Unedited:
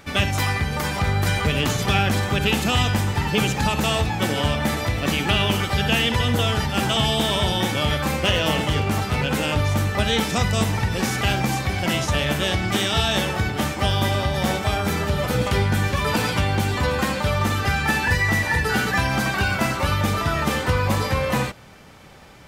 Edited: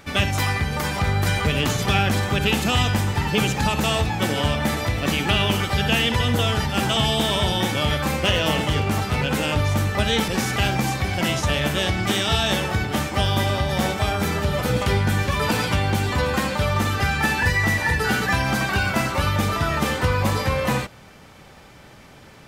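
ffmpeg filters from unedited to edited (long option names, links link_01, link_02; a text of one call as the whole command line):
ffmpeg -i in.wav -filter_complex "[0:a]asplit=2[link_01][link_02];[link_01]atrim=end=10.282[link_03];[link_02]atrim=start=10.928[link_04];[link_03][link_04]acrossfade=duration=0.004:curve1=hsin:curve2=hsin" out.wav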